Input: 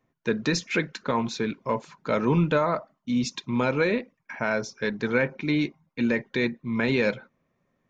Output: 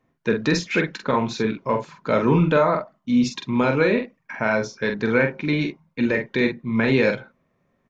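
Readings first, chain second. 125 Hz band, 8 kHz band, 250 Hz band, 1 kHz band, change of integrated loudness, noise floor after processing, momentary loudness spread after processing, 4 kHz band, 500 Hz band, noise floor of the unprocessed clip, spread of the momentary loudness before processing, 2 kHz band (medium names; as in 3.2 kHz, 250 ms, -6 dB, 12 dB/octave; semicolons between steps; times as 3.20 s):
+4.5 dB, no reading, +4.5 dB, +4.5 dB, +4.5 dB, -69 dBFS, 8 LU, +2.5 dB, +5.0 dB, -75 dBFS, 7 LU, +4.5 dB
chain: treble shelf 5.8 kHz -8 dB; doubling 45 ms -6 dB; trim +4 dB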